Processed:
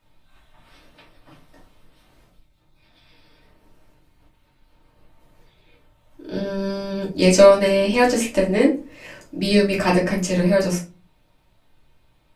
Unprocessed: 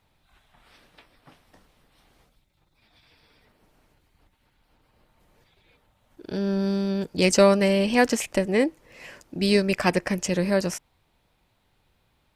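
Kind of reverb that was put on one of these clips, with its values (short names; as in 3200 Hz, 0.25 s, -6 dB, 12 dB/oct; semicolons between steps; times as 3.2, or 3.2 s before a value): shoebox room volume 140 m³, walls furnished, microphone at 2.7 m; gain -2.5 dB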